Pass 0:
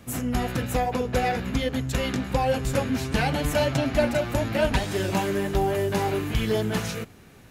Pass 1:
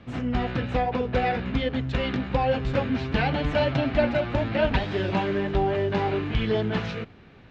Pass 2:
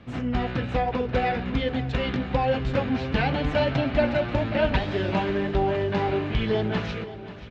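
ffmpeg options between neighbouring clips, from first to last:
ffmpeg -i in.wav -af "lowpass=frequency=3900:width=0.5412,lowpass=frequency=3900:width=1.3066" out.wav
ffmpeg -i in.wav -af "aecho=1:1:535|1070|1605|2140|2675:0.178|0.0996|0.0558|0.0312|0.0175" out.wav

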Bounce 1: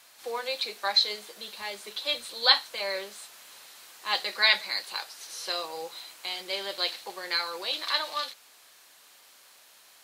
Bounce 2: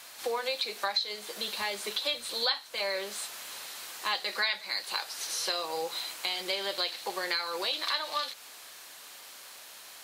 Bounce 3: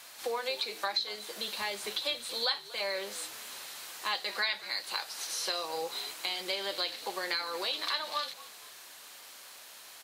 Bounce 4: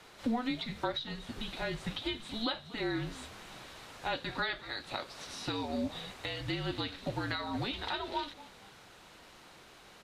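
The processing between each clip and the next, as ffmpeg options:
ffmpeg -i in.wav -af "acompressor=threshold=-37dB:ratio=4,volume=7.5dB" out.wav
ffmpeg -i in.wav -filter_complex "[0:a]asplit=4[link_01][link_02][link_03][link_04];[link_02]adelay=236,afreqshift=-74,volume=-18.5dB[link_05];[link_03]adelay=472,afreqshift=-148,volume=-27.6dB[link_06];[link_04]adelay=708,afreqshift=-222,volume=-36.7dB[link_07];[link_01][link_05][link_06][link_07]amix=inputs=4:normalize=0,volume=-2dB" out.wav
ffmpeg -i in.wav -af "aemphasis=mode=reproduction:type=riaa,afreqshift=-240" out.wav

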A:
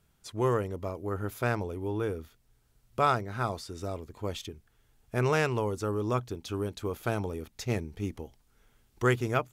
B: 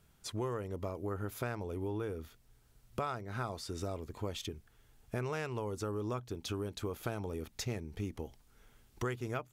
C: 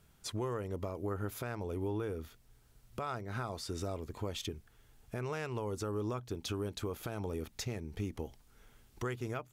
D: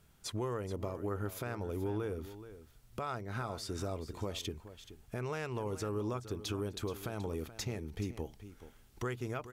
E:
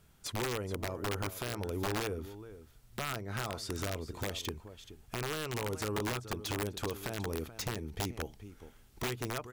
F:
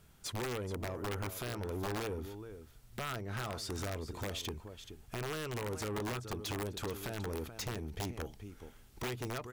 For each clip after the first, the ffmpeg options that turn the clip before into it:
ffmpeg -i in.wav -af "acompressor=threshold=-37dB:ratio=5,volume=2dB" out.wav
ffmpeg -i in.wav -af "alimiter=level_in=5dB:limit=-24dB:level=0:latency=1:release=140,volume=-5dB,volume=1.5dB" out.wav
ffmpeg -i in.wav -af "aecho=1:1:427:0.211" out.wav
ffmpeg -i in.wav -af "aeval=exprs='(mod(29.9*val(0)+1,2)-1)/29.9':channel_layout=same,volume=1.5dB" out.wav
ffmpeg -i in.wav -af "asoftclip=type=tanh:threshold=-35dB,volume=1.5dB" out.wav

